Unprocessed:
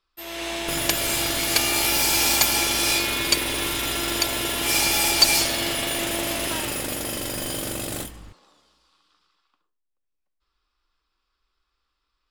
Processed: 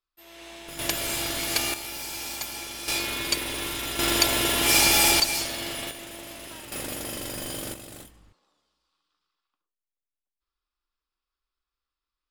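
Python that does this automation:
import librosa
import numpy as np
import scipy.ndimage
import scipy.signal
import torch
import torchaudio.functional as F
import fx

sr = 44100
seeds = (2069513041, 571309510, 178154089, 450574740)

y = fx.gain(x, sr, db=fx.steps((0.0, -14.0), (0.79, -5.0), (1.74, -14.5), (2.88, -5.5), (3.99, 2.0), (5.2, -7.5), (5.91, -14.5), (6.72, -5.0), (7.74, -13.0)))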